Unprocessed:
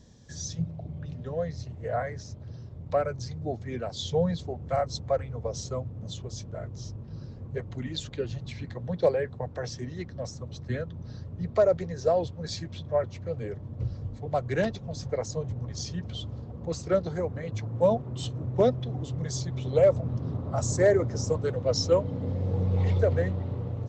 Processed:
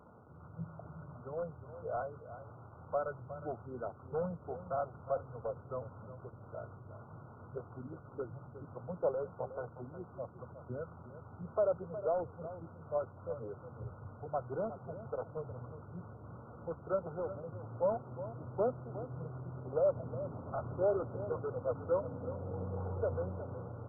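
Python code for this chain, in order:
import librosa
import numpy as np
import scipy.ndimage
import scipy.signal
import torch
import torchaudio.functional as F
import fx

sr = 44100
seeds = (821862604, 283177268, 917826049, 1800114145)

p1 = fx.delta_mod(x, sr, bps=64000, step_db=-40.5)
p2 = scipy.signal.sosfilt(scipy.signal.butter(2, 140.0, 'highpass', fs=sr, output='sos'), p1)
p3 = fx.peak_eq(p2, sr, hz=210.0, db=-9.0, octaves=2.4)
p4 = (np.mod(10.0 ** (28.0 / 20.0) * p3 + 1.0, 2.0) - 1.0) / 10.0 ** (28.0 / 20.0)
p5 = p3 + (p4 * librosa.db_to_amplitude(-7.0))
p6 = fx.brickwall_lowpass(p5, sr, high_hz=1500.0)
p7 = p6 + 10.0 ** (-12.5 / 20.0) * np.pad(p6, (int(362 * sr / 1000.0), 0))[:len(p6)]
y = p7 * librosa.db_to_amplitude(-5.5)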